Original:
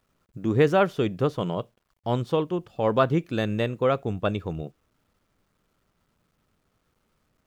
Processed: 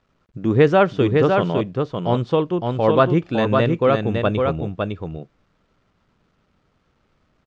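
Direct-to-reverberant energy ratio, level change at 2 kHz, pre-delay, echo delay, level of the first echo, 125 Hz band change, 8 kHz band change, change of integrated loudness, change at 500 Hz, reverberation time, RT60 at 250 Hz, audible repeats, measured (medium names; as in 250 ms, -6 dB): no reverb, +6.5 dB, no reverb, 557 ms, -4.0 dB, +7.0 dB, no reading, +6.5 dB, +7.0 dB, no reverb, no reverb, 1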